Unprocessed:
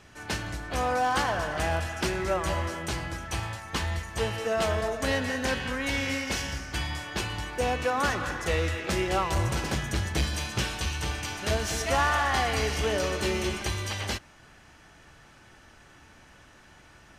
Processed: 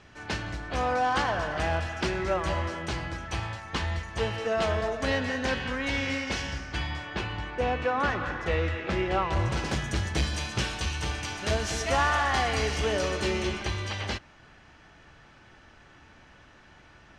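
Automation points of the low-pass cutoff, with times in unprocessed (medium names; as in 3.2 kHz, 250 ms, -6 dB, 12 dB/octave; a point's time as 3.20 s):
6.52 s 5.2 kHz
7.30 s 3 kHz
9.28 s 3 kHz
9.74 s 7.8 kHz
13.14 s 7.8 kHz
13.67 s 4.7 kHz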